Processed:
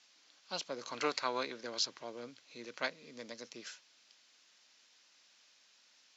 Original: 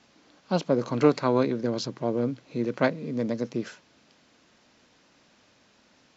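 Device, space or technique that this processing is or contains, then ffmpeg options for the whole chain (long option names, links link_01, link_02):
piezo pickup straight into a mixer: -filter_complex "[0:a]lowpass=6100,aderivative,asettb=1/sr,asplit=3[link_01][link_02][link_03];[link_01]atrim=end=0.894[link_04];[link_02]atrim=start=0.89:end=2.03,asetpts=PTS-STARTPTS,afade=type=in:duration=0.004:curve=qsin,afade=type=out:start_time=1.136:duration=0.004:curve=qsin,equalizer=frequency=1100:width=0.33:gain=4.5[link_05];[link_03]atrim=start=2.026[link_06];[link_04][link_05]acrossfade=duration=0.004:curve1=hsin:curve2=qsin[link_07];[link_07][link_06]acrossfade=duration=0.004:curve1=qsin:curve2=hsin,volume=5dB"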